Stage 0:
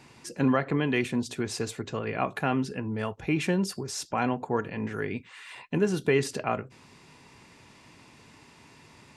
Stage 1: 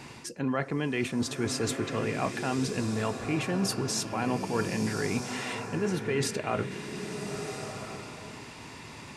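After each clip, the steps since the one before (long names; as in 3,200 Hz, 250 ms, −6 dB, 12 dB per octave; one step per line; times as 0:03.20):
reversed playback
downward compressor 6 to 1, threshold −35 dBFS, peak gain reduction 15.5 dB
reversed playback
slow-attack reverb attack 1,310 ms, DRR 5.5 dB
level +8 dB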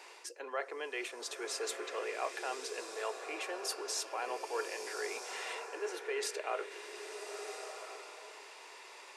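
Butterworth high-pass 390 Hz 48 dB per octave
level −5.5 dB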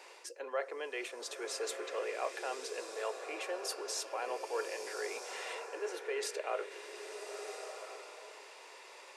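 parametric band 540 Hz +6.5 dB 0.36 octaves
level −1.5 dB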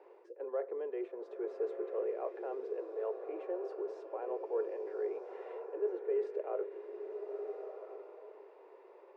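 four-pole ladder band-pass 430 Hz, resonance 55%
level +10 dB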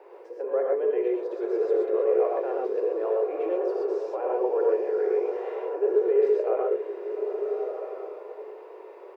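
multiband delay without the direct sound highs, lows 90 ms, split 230 Hz
reverb whose tail is shaped and stops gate 150 ms rising, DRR −1 dB
level +8.5 dB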